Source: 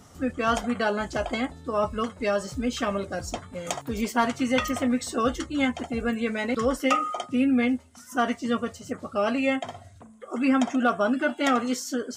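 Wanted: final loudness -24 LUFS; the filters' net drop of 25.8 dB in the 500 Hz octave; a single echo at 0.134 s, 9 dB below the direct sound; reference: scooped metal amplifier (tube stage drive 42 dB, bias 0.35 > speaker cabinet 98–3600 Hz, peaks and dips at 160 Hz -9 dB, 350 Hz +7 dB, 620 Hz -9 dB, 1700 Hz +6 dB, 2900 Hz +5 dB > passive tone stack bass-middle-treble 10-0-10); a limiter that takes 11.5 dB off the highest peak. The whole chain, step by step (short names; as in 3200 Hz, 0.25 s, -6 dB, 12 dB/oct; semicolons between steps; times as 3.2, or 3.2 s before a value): bell 500 Hz -6.5 dB; limiter -23 dBFS; echo 0.134 s -9 dB; tube stage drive 42 dB, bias 0.35; speaker cabinet 98–3600 Hz, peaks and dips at 160 Hz -9 dB, 350 Hz +7 dB, 620 Hz -9 dB, 1700 Hz +6 dB, 2900 Hz +5 dB; passive tone stack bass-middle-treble 10-0-10; gain +27 dB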